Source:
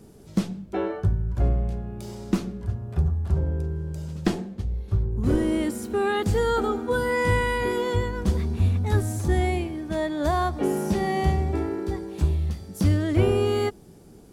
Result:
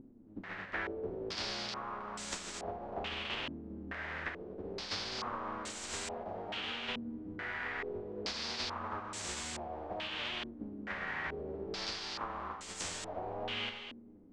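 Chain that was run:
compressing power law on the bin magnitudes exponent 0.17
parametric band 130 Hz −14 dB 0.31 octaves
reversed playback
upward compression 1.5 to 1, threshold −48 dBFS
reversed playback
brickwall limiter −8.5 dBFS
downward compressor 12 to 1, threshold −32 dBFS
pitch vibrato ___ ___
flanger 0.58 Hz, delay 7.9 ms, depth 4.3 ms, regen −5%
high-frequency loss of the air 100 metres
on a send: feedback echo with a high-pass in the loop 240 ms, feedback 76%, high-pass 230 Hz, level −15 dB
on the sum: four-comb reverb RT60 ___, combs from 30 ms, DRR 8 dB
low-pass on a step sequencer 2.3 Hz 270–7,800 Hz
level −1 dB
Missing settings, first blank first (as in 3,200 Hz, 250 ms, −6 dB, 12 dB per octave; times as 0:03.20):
1.5 Hz, 11 cents, 1.4 s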